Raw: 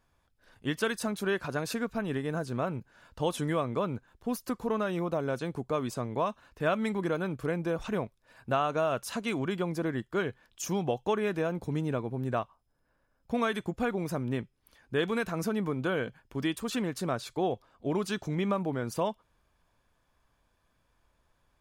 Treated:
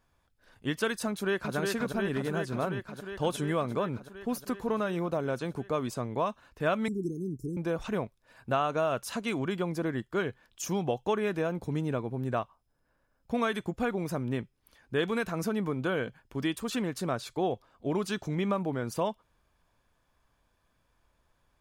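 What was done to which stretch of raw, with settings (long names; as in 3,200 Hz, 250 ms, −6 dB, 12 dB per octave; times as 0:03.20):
0:01.08–0:01.56: delay throw 360 ms, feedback 80%, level −3.5 dB
0:06.88–0:07.57: Chebyshev band-stop filter 400–5,400 Hz, order 5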